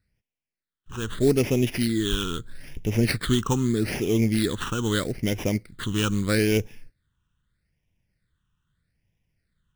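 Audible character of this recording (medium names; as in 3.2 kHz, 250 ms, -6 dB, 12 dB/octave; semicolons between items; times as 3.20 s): aliases and images of a low sample rate 6.9 kHz, jitter 20%; phasing stages 8, 0.79 Hz, lowest notch 620–1300 Hz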